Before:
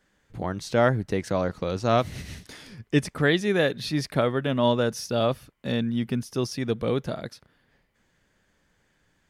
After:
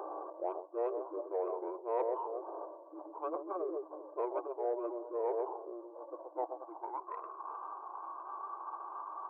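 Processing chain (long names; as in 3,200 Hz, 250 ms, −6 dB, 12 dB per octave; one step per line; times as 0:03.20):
linear delta modulator 64 kbit/s, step −33.5 dBFS
on a send: delay that swaps between a low-pass and a high-pass 131 ms, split 1,100 Hz, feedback 52%, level −10 dB
on the sum: dynamic equaliser 1,200 Hz, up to +6 dB, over −42 dBFS, Q 2.2
reversed playback
downward compressor 10 to 1, threshold −34 dBFS, peak gain reduction 19.5 dB
reversed playback
brick-wall band-pass 310–1,600 Hz
soft clipping −27 dBFS, distortion −25 dB
formants moved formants −5 semitones
high-pass filter sweep 550 Hz → 1,100 Hz, 0:06.37–0:07.15
level +2 dB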